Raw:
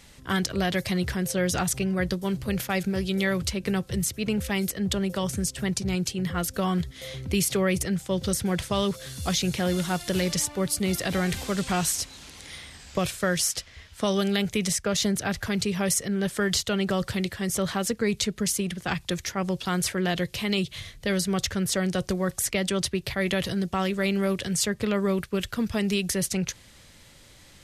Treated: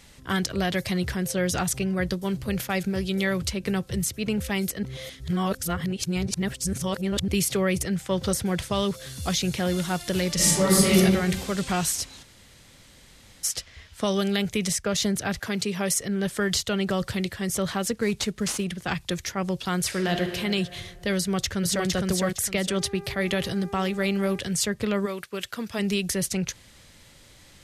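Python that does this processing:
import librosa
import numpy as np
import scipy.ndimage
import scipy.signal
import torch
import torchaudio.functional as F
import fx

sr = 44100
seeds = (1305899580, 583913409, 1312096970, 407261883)

y = fx.peak_eq(x, sr, hz=fx.line((7.97, 2200.0), (8.41, 650.0)), db=7.5, octaves=1.5, at=(7.97, 8.41), fade=0.02)
y = fx.reverb_throw(y, sr, start_s=10.35, length_s=0.6, rt60_s=1.2, drr_db=-9.5)
y = fx.highpass(y, sr, hz=170.0, slope=12, at=(15.39, 16.01))
y = fx.cvsd(y, sr, bps=64000, at=(17.94, 18.64))
y = fx.reverb_throw(y, sr, start_s=19.85, length_s=0.49, rt60_s=2.2, drr_db=4.5)
y = fx.echo_throw(y, sr, start_s=21.17, length_s=0.69, ms=460, feedback_pct=25, wet_db=-2.0)
y = fx.dmg_buzz(y, sr, base_hz=400.0, harmonics=6, level_db=-42.0, tilt_db=-9, odd_only=False, at=(22.76, 24.38), fade=0.02)
y = fx.highpass(y, sr, hz=fx.line((25.05, 800.0), (25.78, 350.0)), slope=6, at=(25.05, 25.78), fade=0.02)
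y = fx.edit(y, sr, fx.reverse_span(start_s=4.83, length_s=2.45),
    fx.room_tone_fill(start_s=12.23, length_s=1.21, crossfade_s=0.02), tone=tone)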